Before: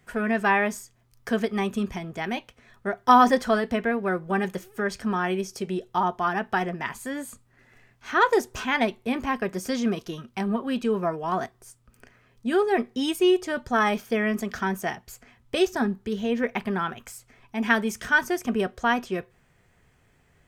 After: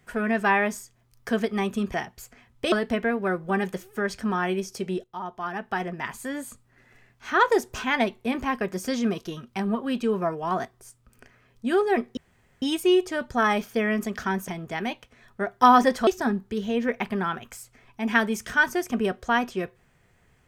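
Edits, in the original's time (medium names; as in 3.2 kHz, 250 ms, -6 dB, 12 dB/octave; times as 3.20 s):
1.94–3.53 s: swap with 14.84–15.62 s
5.85–7.01 s: fade in, from -15 dB
12.98 s: insert room tone 0.45 s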